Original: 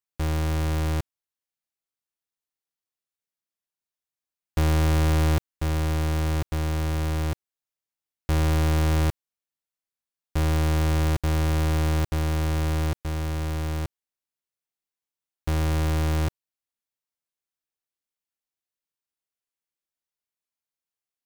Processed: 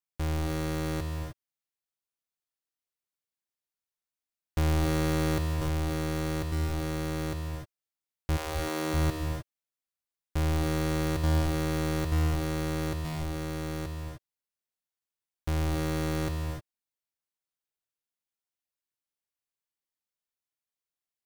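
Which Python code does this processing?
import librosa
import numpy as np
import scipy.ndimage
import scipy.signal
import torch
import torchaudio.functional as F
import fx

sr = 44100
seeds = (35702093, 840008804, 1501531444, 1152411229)

y = fx.highpass(x, sr, hz=fx.line((8.36, 460.0), (8.93, 160.0)), slope=24, at=(8.36, 8.93), fade=0.02)
y = fx.rev_gated(y, sr, seeds[0], gate_ms=330, shape='rising', drr_db=4.0)
y = F.gain(torch.from_numpy(y), -4.5).numpy()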